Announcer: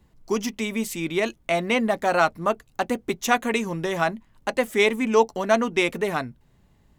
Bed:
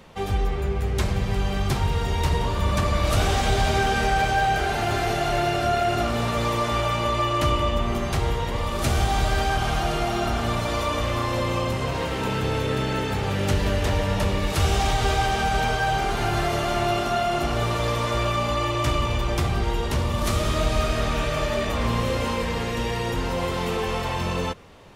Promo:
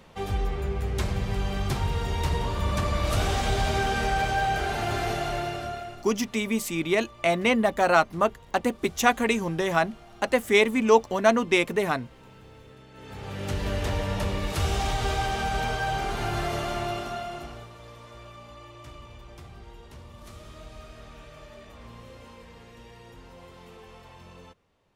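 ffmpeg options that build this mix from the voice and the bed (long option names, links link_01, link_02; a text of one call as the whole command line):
ffmpeg -i stem1.wav -i stem2.wav -filter_complex "[0:a]adelay=5750,volume=0dB[link_01];[1:a]volume=16.5dB,afade=type=out:start_time=5.1:duration=0.94:silence=0.0841395,afade=type=in:start_time=12.93:duration=0.84:silence=0.0944061,afade=type=out:start_time=16.58:duration=1.11:silence=0.141254[link_02];[link_01][link_02]amix=inputs=2:normalize=0" out.wav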